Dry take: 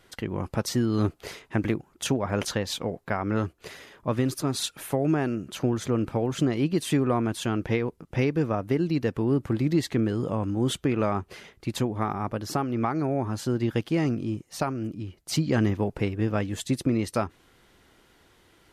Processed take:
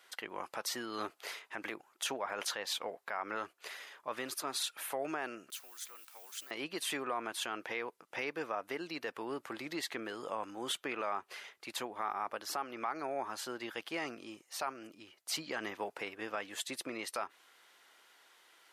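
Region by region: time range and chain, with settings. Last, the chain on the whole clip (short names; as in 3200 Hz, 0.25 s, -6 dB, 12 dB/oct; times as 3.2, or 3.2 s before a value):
5.5–6.51 level-crossing sampler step -47.5 dBFS + differentiator
whole clip: HPF 810 Hz 12 dB/oct; dynamic EQ 6500 Hz, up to -4 dB, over -52 dBFS, Q 1.1; limiter -24 dBFS; gain -1 dB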